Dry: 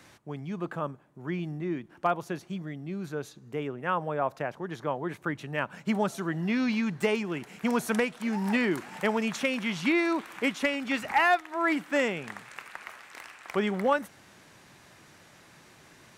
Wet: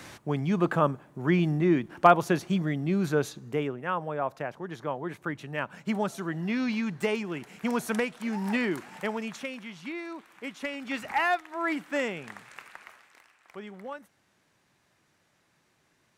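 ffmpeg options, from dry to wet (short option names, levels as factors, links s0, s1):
-af "volume=7.94,afade=t=out:st=3.18:d=0.67:silence=0.298538,afade=t=out:st=8.64:d=1.08:silence=0.298538,afade=t=in:st=10.4:d=0.61:silence=0.354813,afade=t=out:st=12.61:d=0.63:silence=0.266073"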